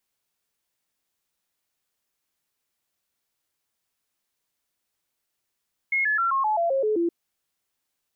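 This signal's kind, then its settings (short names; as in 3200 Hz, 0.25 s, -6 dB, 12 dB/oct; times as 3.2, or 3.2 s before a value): stepped sine 2160 Hz down, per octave 3, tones 9, 0.13 s, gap 0.00 s -20 dBFS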